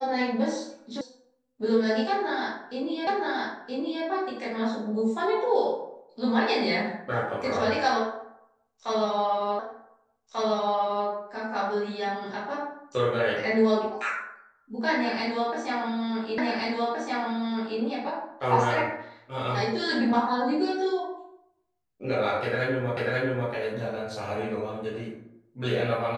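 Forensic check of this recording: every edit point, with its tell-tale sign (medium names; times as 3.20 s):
1.01 s: sound stops dead
3.07 s: repeat of the last 0.97 s
9.59 s: repeat of the last 1.49 s
16.38 s: repeat of the last 1.42 s
22.97 s: repeat of the last 0.54 s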